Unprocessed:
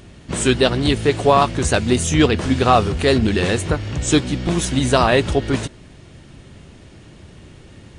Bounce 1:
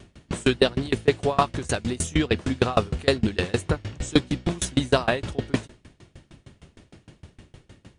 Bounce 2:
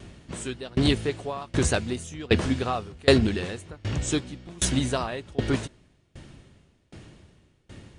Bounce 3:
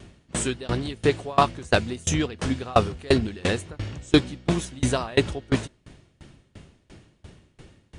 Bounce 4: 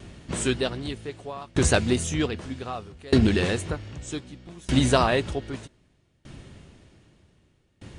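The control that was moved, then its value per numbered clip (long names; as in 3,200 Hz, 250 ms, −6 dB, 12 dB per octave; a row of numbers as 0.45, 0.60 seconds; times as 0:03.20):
tremolo with a ramp in dB, speed: 6.5, 1.3, 2.9, 0.64 Hertz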